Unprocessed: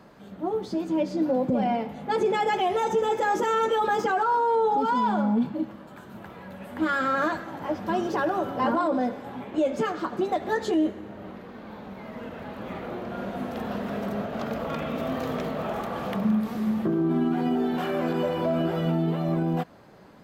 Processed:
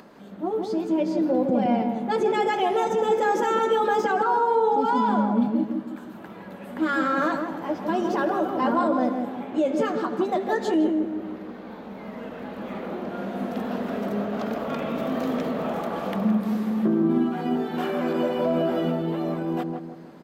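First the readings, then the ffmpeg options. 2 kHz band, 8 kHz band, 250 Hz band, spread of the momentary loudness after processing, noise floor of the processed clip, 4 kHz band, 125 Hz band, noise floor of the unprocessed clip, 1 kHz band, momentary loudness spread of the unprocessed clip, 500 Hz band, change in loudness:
+0.5 dB, n/a, +2.5 dB, 14 LU, -41 dBFS, 0.0 dB, -2.0 dB, -45 dBFS, +1.5 dB, 15 LU, +2.5 dB, +2.0 dB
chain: -filter_complex "[0:a]lowshelf=f=160:t=q:w=1.5:g=-7.5,acompressor=mode=upward:threshold=-45dB:ratio=2.5,asplit=2[a][b];[b]adelay=160,lowpass=f=840:p=1,volume=-3dB,asplit=2[c][d];[d]adelay=160,lowpass=f=840:p=1,volume=0.47,asplit=2[e][f];[f]adelay=160,lowpass=f=840:p=1,volume=0.47,asplit=2[g][h];[h]adelay=160,lowpass=f=840:p=1,volume=0.47,asplit=2[i][j];[j]adelay=160,lowpass=f=840:p=1,volume=0.47,asplit=2[k][l];[l]adelay=160,lowpass=f=840:p=1,volume=0.47[m];[c][e][g][i][k][m]amix=inputs=6:normalize=0[n];[a][n]amix=inputs=2:normalize=0"

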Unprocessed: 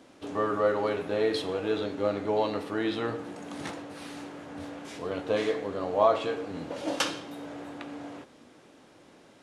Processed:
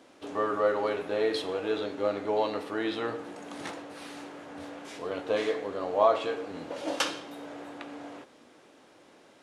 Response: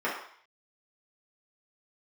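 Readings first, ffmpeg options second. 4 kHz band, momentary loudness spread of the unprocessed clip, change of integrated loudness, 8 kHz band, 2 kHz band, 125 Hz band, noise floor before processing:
-0.5 dB, 15 LU, 0.0 dB, -1.0 dB, 0.0 dB, -7.0 dB, -56 dBFS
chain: -af "bass=f=250:g=-8,treble=f=4k:g=-1"

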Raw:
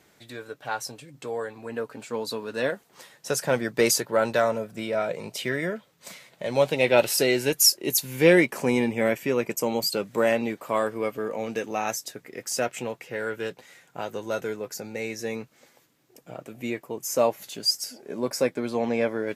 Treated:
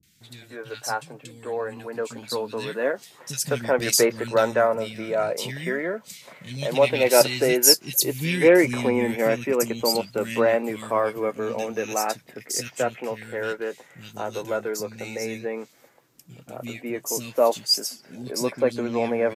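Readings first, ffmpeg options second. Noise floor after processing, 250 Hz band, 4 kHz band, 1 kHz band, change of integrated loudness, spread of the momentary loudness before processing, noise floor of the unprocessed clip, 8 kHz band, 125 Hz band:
-54 dBFS, +1.0 dB, +2.5 dB, +2.5 dB, +2.0 dB, 17 LU, -62 dBFS, +3.0 dB, +1.5 dB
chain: -filter_complex "[0:a]acrossover=split=220|2300[a][b][c];[c]adelay=30[d];[b]adelay=210[e];[a][e][d]amix=inputs=3:normalize=0,volume=3dB"

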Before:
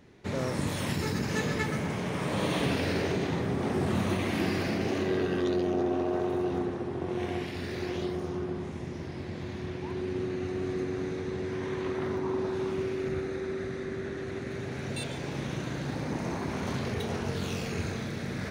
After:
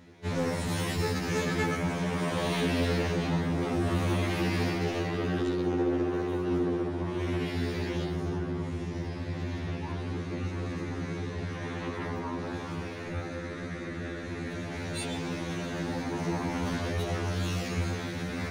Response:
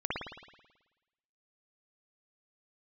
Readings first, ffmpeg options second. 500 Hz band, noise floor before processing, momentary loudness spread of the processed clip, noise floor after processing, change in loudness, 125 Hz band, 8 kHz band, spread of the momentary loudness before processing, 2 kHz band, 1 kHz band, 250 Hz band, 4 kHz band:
-1.5 dB, -38 dBFS, 8 LU, -37 dBFS, +0.5 dB, +2.0 dB, +1.0 dB, 8 LU, +1.0 dB, +0.5 dB, 0.0 dB, +1.0 dB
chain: -filter_complex "[0:a]asoftclip=type=tanh:threshold=-25.5dB,asplit=2[a][b];[1:a]atrim=start_sample=2205[c];[b][c]afir=irnorm=-1:irlink=0,volume=-24dB[d];[a][d]amix=inputs=2:normalize=0,afftfilt=real='re*2*eq(mod(b,4),0)':imag='im*2*eq(mod(b,4),0)':win_size=2048:overlap=0.75,volume=4.5dB"

